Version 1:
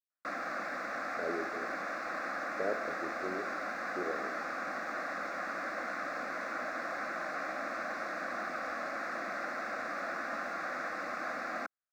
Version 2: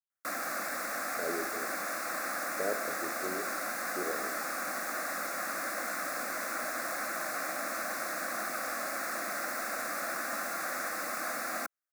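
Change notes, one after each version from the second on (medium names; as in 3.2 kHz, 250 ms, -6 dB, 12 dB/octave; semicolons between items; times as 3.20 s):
master: remove distance through air 210 m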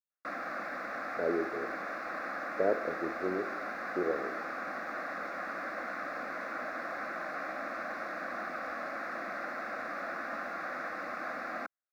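speech +6.5 dB; master: add distance through air 310 m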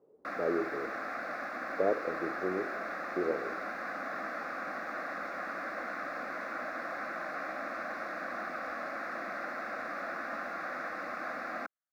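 speech: entry -0.80 s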